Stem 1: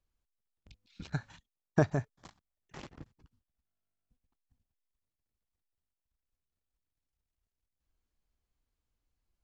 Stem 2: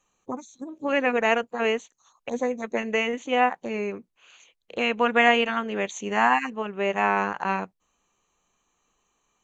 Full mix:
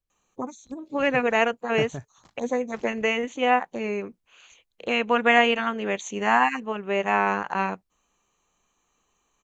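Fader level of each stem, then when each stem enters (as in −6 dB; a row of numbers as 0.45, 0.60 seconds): −4.0, +0.5 decibels; 0.00, 0.10 seconds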